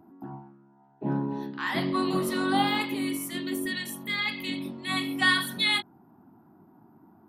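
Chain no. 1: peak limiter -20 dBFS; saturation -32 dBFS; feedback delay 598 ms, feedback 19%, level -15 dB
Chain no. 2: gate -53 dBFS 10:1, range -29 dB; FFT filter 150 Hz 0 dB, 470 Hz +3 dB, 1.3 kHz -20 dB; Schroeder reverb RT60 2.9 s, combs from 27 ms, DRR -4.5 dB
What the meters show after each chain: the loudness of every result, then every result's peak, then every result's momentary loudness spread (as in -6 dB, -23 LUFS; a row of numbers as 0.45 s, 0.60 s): -35.5 LUFS, -22.0 LUFS; -30.5 dBFS, -7.5 dBFS; 13 LU, 21 LU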